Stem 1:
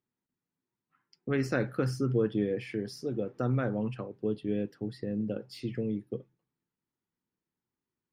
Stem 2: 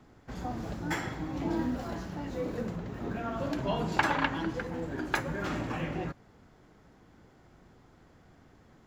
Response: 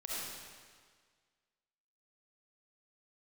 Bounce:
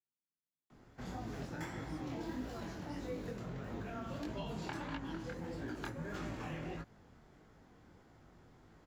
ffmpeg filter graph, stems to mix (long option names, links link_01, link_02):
-filter_complex "[0:a]volume=-15dB[link_01];[1:a]adelay=700,volume=-0.5dB[link_02];[link_01][link_02]amix=inputs=2:normalize=0,acrossover=split=81|350|1800|4100[link_03][link_04][link_05][link_06][link_07];[link_03]acompressor=threshold=-49dB:ratio=4[link_08];[link_04]acompressor=threshold=-41dB:ratio=4[link_09];[link_05]acompressor=threshold=-44dB:ratio=4[link_10];[link_06]acompressor=threshold=-53dB:ratio=4[link_11];[link_07]acompressor=threshold=-55dB:ratio=4[link_12];[link_08][link_09][link_10][link_11][link_12]amix=inputs=5:normalize=0,flanger=delay=18:depth=8:speed=1.6"